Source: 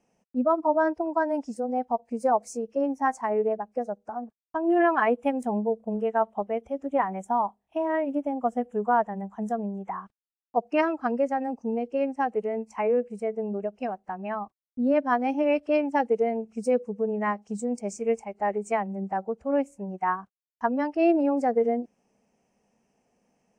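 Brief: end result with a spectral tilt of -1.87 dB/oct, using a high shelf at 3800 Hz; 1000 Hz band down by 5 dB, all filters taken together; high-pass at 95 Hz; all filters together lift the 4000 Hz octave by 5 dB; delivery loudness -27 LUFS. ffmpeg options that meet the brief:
-af "highpass=95,equalizer=f=1k:t=o:g=-7.5,highshelf=f=3.8k:g=3.5,equalizer=f=4k:t=o:g=6.5,volume=2dB"

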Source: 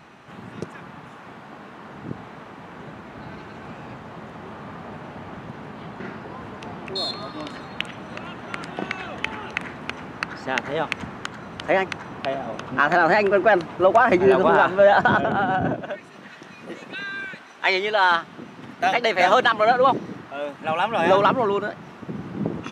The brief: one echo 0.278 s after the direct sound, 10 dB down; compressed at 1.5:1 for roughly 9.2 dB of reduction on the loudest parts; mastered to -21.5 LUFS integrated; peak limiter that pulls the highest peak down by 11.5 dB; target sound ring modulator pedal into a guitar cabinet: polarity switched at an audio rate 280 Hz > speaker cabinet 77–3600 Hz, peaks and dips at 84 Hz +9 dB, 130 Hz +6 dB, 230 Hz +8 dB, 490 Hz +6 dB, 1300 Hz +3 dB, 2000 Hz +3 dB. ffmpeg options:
-af "acompressor=threshold=-38dB:ratio=1.5,alimiter=limit=-23dB:level=0:latency=1,aecho=1:1:278:0.316,aeval=exprs='val(0)*sgn(sin(2*PI*280*n/s))':c=same,highpass=77,equalizer=f=84:t=q:w=4:g=9,equalizer=f=130:t=q:w=4:g=6,equalizer=f=230:t=q:w=4:g=8,equalizer=f=490:t=q:w=4:g=6,equalizer=f=1.3k:t=q:w=4:g=3,equalizer=f=2k:t=q:w=4:g=3,lowpass=f=3.6k:w=0.5412,lowpass=f=3.6k:w=1.3066,volume=11.5dB"

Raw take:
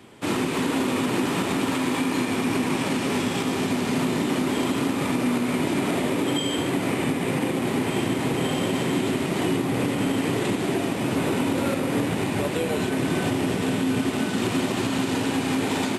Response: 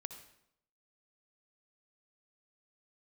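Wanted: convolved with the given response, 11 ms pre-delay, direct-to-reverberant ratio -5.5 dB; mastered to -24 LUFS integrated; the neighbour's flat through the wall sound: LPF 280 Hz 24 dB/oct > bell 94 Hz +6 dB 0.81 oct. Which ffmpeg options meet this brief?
-filter_complex "[0:a]asplit=2[a][b];[1:a]atrim=start_sample=2205,adelay=11[c];[b][c]afir=irnorm=-1:irlink=0,volume=9dB[d];[a][d]amix=inputs=2:normalize=0,lowpass=f=280:w=0.5412,lowpass=f=280:w=1.3066,equalizer=f=94:t=o:w=0.81:g=6,volume=-3.5dB"

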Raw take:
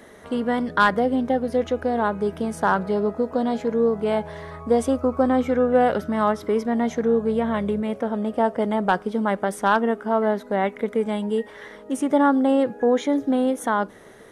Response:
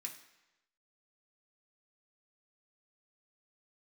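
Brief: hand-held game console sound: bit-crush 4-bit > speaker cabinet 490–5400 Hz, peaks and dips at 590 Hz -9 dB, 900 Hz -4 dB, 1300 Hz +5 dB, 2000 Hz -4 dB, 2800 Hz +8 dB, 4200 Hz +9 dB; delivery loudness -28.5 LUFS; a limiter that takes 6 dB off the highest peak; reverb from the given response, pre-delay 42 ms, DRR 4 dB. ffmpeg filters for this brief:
-filter_complex "[0:a]alimiter=limit=-14dB:level=0:latency=1,asplit=2[a][b];[1:a]atrim=start_sample=2205,adelay=42[c];[b][c]afir=irnorm=-1:irlink=0,volume=-0.5dB[d];[a][d]amix=inputs=2:normalize=0,acrusher=bits=3:mix=0:aa=0.000001,highpass=490,equalizer=f=590:t=q:w=4:g=-9,equalizer=f=900:t=q:w=4:g=-4,equalizer=f=1.3k:t=q:w=4:g=5,equalizer=f=2k:t=q:w=4:g=-4,equalizer=f=2.8k:t=q:w=4:g=8,equalizer=f=4.2k:t=q:w=4:g=9,lowpass=f=5.4k:w=0.5412,lowpass=f=5.4k:w=1.3066,volume=-4.5dB"

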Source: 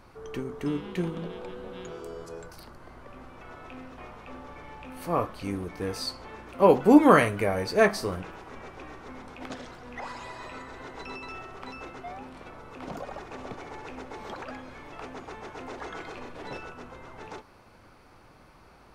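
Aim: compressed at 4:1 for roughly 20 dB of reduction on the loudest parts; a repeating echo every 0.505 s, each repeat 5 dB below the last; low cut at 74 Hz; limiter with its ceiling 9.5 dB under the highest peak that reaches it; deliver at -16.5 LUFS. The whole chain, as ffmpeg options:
-af "highpass=74,acompressor=threshold=-36dB:ratio=4,alimiter=level_in=9dB:limit=-24dB:level=0:latency=1,volume=-9dB,aecho=1:1:505|1010|1515|2020|2525|3030|3535:0.562|0.315|0.176|0.0988|0.0553|0.031|0.0173,volume=25.5dB"

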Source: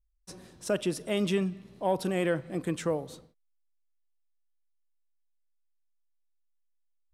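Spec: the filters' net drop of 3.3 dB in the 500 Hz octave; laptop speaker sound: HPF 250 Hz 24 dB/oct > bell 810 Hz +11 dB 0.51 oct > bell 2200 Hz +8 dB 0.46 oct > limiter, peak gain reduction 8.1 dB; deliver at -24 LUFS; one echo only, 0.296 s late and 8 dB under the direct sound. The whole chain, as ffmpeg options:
-af "highpass=f=250:w=0.5412,highpass=f=250:w=1.3066,equalizer=f=500:t=o:g=-6.5,equalizer=f=810:t=o:w=0.51:g=11,equalizer=f=2.2k:t=o:w=0.46:g=8,aecho=1:1:296:0.398,volume=10.5dB,alimiter=limit=-12dB:level=0:latency=1"

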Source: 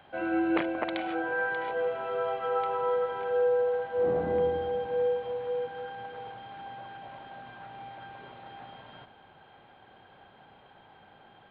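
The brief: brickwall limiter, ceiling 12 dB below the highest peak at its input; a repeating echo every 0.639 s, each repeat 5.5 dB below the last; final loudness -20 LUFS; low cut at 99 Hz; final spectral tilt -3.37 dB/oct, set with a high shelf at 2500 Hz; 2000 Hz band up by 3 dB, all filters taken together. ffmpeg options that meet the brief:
-af "highpass=99,equalizer=f=2k:t=o:g=6,highshelf=f=2.5k:g=-4,alimiter=level_in=1dB:limit=-24dB:level=0:latency=1,volume=-1dB,aecho=1:1:639|1278|1917|2556|3195|3834|4473:0.531|0.281|0.149|0.079|0.0419|0.0222|0.0118,volume=12dB"

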